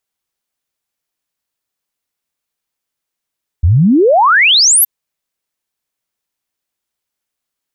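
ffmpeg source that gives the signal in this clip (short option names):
-f lavfi -i "aevalsrc='0.531*clip(min(t,1.22-t)/0.01,0,1)*sin(2*PI*74*1.22/log(13000/74)*(exp(log(13000/74)*t/1.22)-1))':d=1.22:s=44100"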